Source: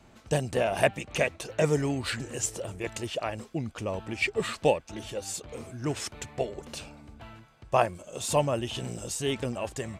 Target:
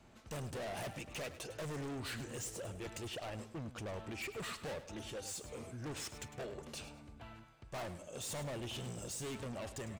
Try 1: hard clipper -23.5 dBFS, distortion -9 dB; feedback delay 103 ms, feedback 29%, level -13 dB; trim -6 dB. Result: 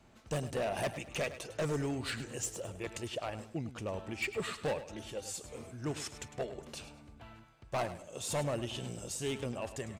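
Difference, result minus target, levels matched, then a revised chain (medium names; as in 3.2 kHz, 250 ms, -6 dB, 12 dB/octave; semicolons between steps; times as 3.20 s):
hard clipper: distortion -7 dB
hard clipper -34.5 dBFS, distortion -2 dB; feedback delay 103 ms, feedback 29%, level -13 dB; trim -6 dB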